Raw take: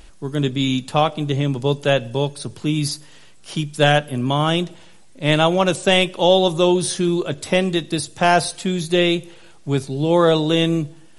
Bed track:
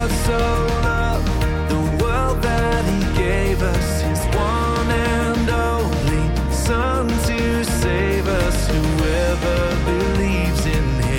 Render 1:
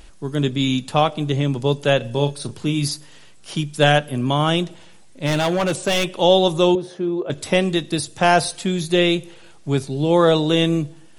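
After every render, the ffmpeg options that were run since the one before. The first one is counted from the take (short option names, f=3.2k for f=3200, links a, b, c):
-filter_complex "[0:a]asettb=1/sr,asplit=3[a][b][c];[a]atrim=end=1.974[d];[b]atrim=start=1.97:end=2.85,asetpts=PTS-STARTPTS,afade=t=in:d=0.004:c=qsin,afade=t=out:st=0.876:d=0.004:c=qsin,asplit=2[e][f];[f]adelay=35,volume=-9.5dB[g];[e][g]amix=inputs=2:normalize=0,atrim=end_sample=38808[h];[c]atrim=start=2.846[i];[d][h]acrossfade=d=0.004:c1=hsin:c2=qsin[j];[j][i]acrossfade=d=0.004:c1=qsin:c2=hsin,asplit=3[k][l][m];[k]afade=t=out:st=5.25:d=0.02[n];[l]volume=15dB,asoftclip=hard,volume=-15dB,afade=t=in:st=5.25:d=0.02,afade=t=out:st=6.15:d=0.02[o];[m]afade=t=in:st=6.15:d=0.02[p];[n][o][p]amix=inputs=3:normalize=0,asettb=1/sr,asplit=3[q][r][s];[q]atrim=end=6.754[t];[r]atrim=start=6.75:end=7.3,asetpts=PTS-STARTPTS,afade=t=in:d=0.004:c=qsin,afade=t=out:st=0.546:d=0.004:c=qsin,bandpass=f=520:t=q:w=1[u];[s]atrim=start=7.296[v];[t][u]acrossfade=d=0.004:c1=hsin:c2=qsin[w];[w][v]acrossfade=d=0.004:c1=qsin:c2=hsin"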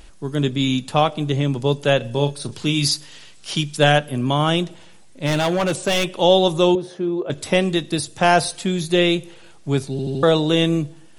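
-filter_complex "[0:a]asettb=1/sr,asplit=3[a][b][c];[a]atrim=end=2.524[d];[b]atrim=start=2.52:end=3.77,asetpts=PTS-STARTPTS,afade=t=in:d=0.004:c=qsin,afade=t=out:st=1.246:d=0.004:c=qsin,equalizer=f=4.2k:t=o:w=2.3:g=7.5[e];[c]atrim=start=3.766[f];[d][e]acrossfade=d=0.004:c1=hsin:c2=qsin[g];[g][f]acrossfade=d=0.004:c1=qsin:c2=hsin,asplit=5[h][i][j][k][l];[h]atrim=end=9.992[m];[i]atrim=start=9.908:end=9.992[n];[j]atrim=start=9.908:end=9.992[o];[k]atrim=start=9.908:end=9.992[p];[l]atrim=start=10.228[q];[m][n]acrossfade=d=0.004:c1=hsin:c2=hsin[r];[r][o]acrossfade=d=0.004:c1=hsin:c2=hsin[s];[s][p]acrossfade=d=0.004:c1=hsin:c2=hsin[t];[t][q]acrossfade=d=0.004:c1=hsin:c2=hsin"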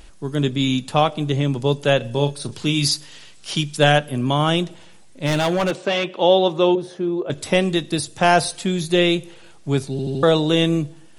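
-filter_complex "[0:a]asplit=3[a][b][c];[a]afade=t=out:st=5.7:d=0.02[d];[b]highpass=210,lowpass=3.4k,afade=t=in:st=5.7:d=0.02,afade=t=out:st=6.76:d=0.02[e];[c]afade=t=in:st=6.76:d=0.02[f];[d][e][f]amix=inputs=3:normalize=0"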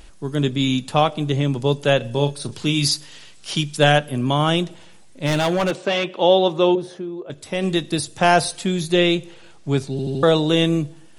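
-filter_complex "[0:a]asettb=1/sr,asplit=3[a][b][c];[a]atrim=end=8.914[d];[b]atrim=start=8.91:end=9.97,asetpts=PTS-STARTPTS,afade=t=in:d=0.004:c=qsin,afade=t=out:st=1.056:d=0.004:c=qsin,lowpass=8.9k[e];[c]atrim=start=9.966[f];[d][e]acrossfade=d=0.004:c1=hsin:c2=qsin[g];[g][f]acrossfade=d=0.004:c1=qsin:c2=hsin,asplit=3[h][i][j];[h]atrim=end=7.26,asetpts=PTS-STARTPTS,afade=t=out:st=6.98:d=0.28:c=exp:silence=0.398107[k];[i]atrim=start=7.26:end=7.36,asetpts=PTS-STARTPTS,volume=-8dB[l];[j]atrim=start=7.36,asetpts=PTS-STARTPTS,afade=t=in:d=0.28:c=exp:silence=0.398107[m];[k][l][m]concat=n=3:v=0:a=1"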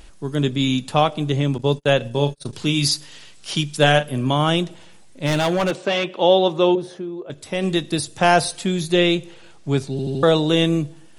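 -filter_complex "[0:a]asettb=1/sr,asplit=3[a][b][c];[a]atrim=end=1.584[d];[b]atrim=start=1.58:end=2.53,asetpts=PTS-STARTPTS,afade=t=in:d=0.004:c=qsin,afade=t=out:st=0.946:d=0.004:c=qsin,agate=range=-37dB:threshold=-31dB:ratio=16:release=100:detection=peak[e];[c]atrim=start=2.526[f];[d][e]acrossfade=d=0.004:c1=hsin:c2=qsin[g];[g][f]acrossfade=d=0.004:c1=qsin:c2=hsin,asettb=1/sr,asplit=3[h][i][j];[h]atrim=end=3.764[k];[i]atrim=start=3.76:end=4.36,asetpts=PTS-STARTPTS,afade=t=in:d=0.004:c=qsin,afade=t=out:st=0.596:d=0.004:c=qsin,asplit=2[l][m];[m]adelay=39,volume=-12dB[n];[l][n]amix=inputs=2:normalize=0,atrim=end_sample=26460[o];[j]atrim=start=4.356[p];[k][o]acrossfade=d=0.004:c1=hsin:c2=qsin[q];[q][p]acrossfade=d=0.004:c1=qsin:c2=hsin"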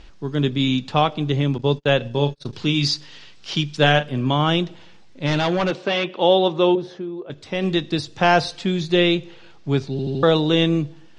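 -af "lowpass=f=5.5k:w=0.5412,lowpass=f=5.5k:w=1.3066,equalizer=f=620:w=5.3:g=-3.5"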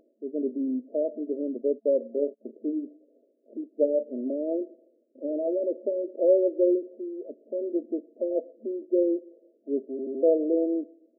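-af "afftfilt=real='re*between(b*sr/4096,220,670)':imag='im*between(b*sr/4096,220,670)':win_size=4096:overlap=0.75,lowshelf=f=320:g=-11.5"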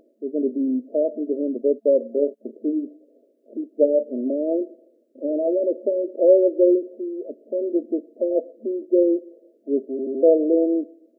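-af "volume=6dB"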